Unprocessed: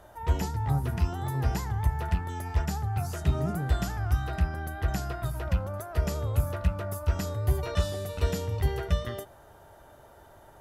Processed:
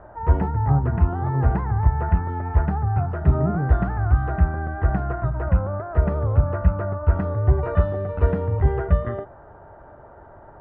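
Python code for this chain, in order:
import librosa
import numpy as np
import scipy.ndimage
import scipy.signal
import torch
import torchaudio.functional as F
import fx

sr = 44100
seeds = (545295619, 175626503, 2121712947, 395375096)

y = scipy.signal.sosfilt(scipy.signal.butter(4, 1600.0, 'lowpass', fs=sr, output='sos'), x)
y = F.gain(torch.from_numpy(y), 8.0).numpy()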